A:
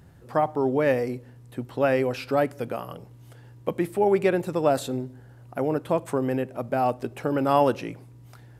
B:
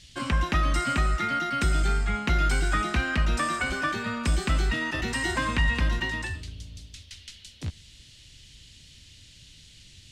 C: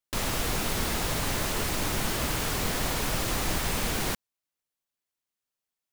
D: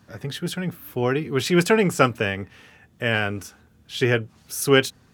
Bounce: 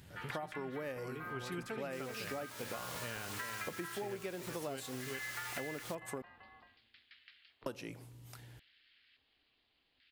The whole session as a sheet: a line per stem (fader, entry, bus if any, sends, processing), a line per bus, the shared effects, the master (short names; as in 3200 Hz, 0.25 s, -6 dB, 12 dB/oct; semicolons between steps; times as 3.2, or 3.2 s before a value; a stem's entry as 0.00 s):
-6.5 dB, 0.00 s, muted 6.22–7.66, no send, no echo send, high shelf 2800 Hz +10.5 dB
-2.5 dB, 0.00 s, no send, echo send -12.5 dB, steep low-pass 4900 Hz 96 dB/oct; LFO band-pass square 0.6 Hz 870–1800 Hz; ring modulator 170 Hz
-9.0 dB, 1.80 s, no send, no echo send, HPF 400 Hz 24 dB/oct; bell 630 Hz -12.5 dB 1.8 oct
-16.0 dB, 0.00 s, no send, echo send -6.5 dB, dry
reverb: off
echo: echo 0.386 s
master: compressor 12:1, threshold -38 dBFS, peak gain reduction 17.5 dB